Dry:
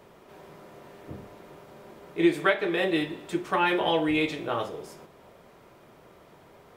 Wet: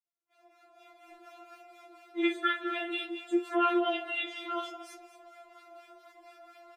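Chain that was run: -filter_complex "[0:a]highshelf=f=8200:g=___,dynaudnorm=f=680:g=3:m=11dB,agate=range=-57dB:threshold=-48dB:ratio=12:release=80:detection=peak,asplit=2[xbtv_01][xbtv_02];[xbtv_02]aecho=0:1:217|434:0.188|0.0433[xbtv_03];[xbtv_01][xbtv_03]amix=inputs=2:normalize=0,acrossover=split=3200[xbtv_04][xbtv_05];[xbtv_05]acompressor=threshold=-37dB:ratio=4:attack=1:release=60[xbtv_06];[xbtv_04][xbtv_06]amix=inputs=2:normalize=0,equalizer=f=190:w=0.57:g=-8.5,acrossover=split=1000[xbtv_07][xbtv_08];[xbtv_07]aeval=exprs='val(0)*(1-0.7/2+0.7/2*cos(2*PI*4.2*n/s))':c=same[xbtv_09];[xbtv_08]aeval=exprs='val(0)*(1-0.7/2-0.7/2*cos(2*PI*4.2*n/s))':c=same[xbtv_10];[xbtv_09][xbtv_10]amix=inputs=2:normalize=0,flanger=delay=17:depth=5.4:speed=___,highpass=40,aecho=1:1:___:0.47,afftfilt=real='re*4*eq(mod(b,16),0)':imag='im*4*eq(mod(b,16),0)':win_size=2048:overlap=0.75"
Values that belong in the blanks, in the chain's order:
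-12, 0.59, 7.3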